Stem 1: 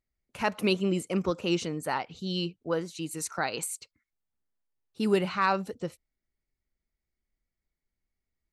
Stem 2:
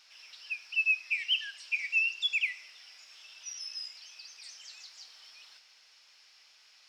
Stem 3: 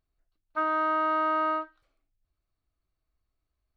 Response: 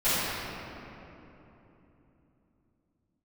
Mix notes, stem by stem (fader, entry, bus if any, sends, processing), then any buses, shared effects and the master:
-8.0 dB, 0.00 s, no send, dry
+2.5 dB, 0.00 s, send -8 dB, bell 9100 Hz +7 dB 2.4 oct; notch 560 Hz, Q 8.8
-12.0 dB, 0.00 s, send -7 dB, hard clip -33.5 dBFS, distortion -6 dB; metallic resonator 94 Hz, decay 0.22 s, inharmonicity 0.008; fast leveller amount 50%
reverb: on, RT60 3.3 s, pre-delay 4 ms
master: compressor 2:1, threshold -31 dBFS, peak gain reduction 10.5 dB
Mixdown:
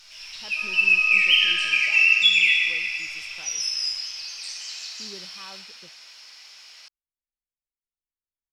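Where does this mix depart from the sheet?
stem 1 -8.0 dB -> -20.0 dB; stem 2: missing notch 560 Hz, Q 8.8; master: missing compressor 2:1, threshold -31 dBFS, peak gain reduction 10.5 dB

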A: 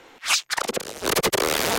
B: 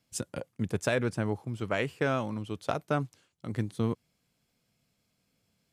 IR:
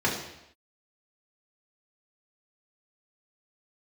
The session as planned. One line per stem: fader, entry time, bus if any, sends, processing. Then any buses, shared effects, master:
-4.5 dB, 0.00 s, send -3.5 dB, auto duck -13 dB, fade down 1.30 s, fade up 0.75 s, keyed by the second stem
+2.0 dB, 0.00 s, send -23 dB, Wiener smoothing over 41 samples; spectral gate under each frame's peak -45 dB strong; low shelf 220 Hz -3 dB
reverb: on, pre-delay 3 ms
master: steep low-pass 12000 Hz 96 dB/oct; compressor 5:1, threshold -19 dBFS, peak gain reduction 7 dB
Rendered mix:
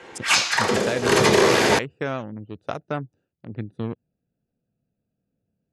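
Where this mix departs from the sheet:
stem B: send off; master: missing compressor 5:1, threshold -19 dBFS, peak gain reduction 7 dB

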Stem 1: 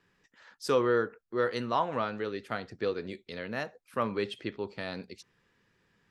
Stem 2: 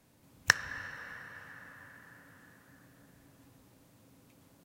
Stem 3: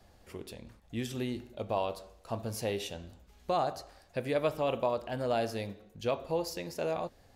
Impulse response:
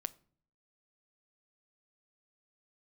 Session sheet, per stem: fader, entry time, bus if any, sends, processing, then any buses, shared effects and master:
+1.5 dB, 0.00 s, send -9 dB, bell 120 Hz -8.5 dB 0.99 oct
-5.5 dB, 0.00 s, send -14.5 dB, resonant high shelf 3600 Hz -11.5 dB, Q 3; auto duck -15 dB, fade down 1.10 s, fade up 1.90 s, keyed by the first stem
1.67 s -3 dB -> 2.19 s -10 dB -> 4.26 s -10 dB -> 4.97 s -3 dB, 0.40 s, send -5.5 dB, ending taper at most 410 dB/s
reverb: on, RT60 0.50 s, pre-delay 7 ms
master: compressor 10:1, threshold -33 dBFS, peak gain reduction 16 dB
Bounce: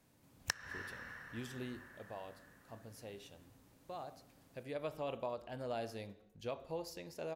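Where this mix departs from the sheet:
stem 1: muted; stem 2: missing resonant high shelf 3600 Hz -11.5 dB, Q 3; stem 3 -3.0 dB -> -13.0 dB

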